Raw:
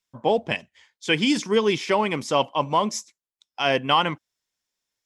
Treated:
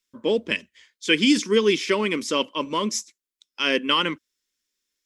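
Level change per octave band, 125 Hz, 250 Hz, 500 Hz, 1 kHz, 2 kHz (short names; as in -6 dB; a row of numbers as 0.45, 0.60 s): -5.0, +2.5, 0.0, -6.0, +2.0 dB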